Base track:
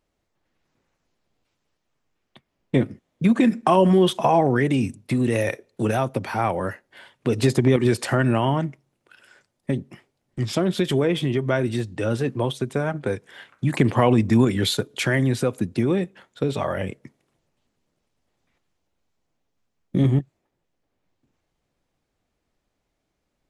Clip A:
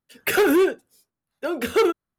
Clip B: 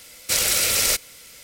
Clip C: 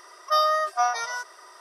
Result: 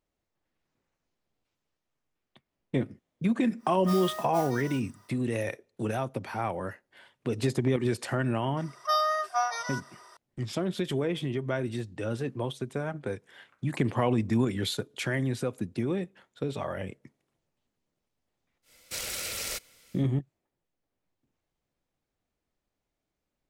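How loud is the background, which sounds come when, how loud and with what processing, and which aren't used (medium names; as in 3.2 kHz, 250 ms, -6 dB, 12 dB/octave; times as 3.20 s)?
base track -8.5 dB
3.56 s: add C -14.5 dB, fades 0.10 s + modulation noise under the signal 10 dB
8.57 s: add C -4.5 dB
18.62 s: add B -12 dB, fades 0.10 s + treble shelf 4.7 kHz -4.5 dB
not used: A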